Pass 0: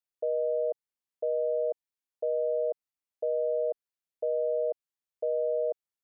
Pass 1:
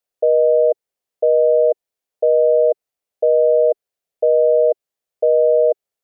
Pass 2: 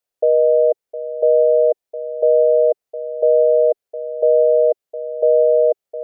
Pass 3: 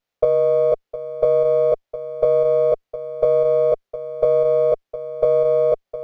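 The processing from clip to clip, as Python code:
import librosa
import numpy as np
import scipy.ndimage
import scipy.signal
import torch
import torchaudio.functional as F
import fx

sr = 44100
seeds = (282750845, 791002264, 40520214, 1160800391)

y1 = fx.band_shelf(x, sr, hz=540.0, db=8.0, octaves=1.1)
y1 = F.gain(torch.from_numpy(y1), 7.0).numpy()
y2 = y1 + 10.0 ** (-13.0 / 20.0) * np.pad(y1, (int(710 * sr / 1000.0), 0))[:len(y1)]
y3 = fx.doubler(y2, sr, ms=20.0, db=-2.0)
y3 = fx.running_max(y3, sr, window=5)
y3 = F.gain(torch.from_numpy(y3), 1.5).numpy()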